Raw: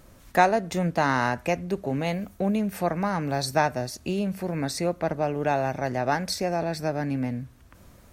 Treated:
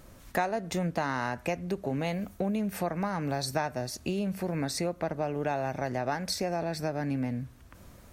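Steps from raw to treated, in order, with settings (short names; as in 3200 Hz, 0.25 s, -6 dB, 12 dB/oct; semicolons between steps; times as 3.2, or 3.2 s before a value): compressor 3:1, threshold -28 dBFS, peak gain reduction 11.5 dB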